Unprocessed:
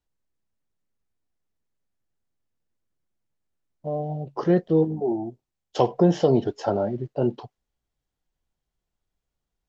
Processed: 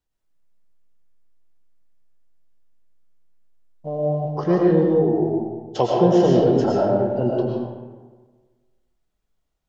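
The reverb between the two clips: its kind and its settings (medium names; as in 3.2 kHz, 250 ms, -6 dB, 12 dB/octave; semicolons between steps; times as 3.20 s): algorithmic reverb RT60 1.4 s, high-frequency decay 0.55×, pre-delay 70 ms, DRR -3 dB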